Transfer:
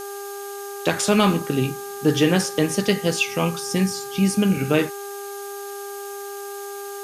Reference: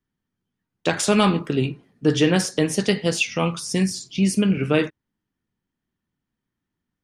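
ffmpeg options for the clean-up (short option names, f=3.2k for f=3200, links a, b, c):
-af "adeclick=t=4,bandreject=f=401.3:t=h:w=4,bandreject=f=802.6:t=h:w=4,bandreject=f=1.2039k:t=h:w=4,bandreject=f=1.6052k:t=h:w=4,bandreject=f=6.5k:w=30,afftdn=nr=30:nf=-33"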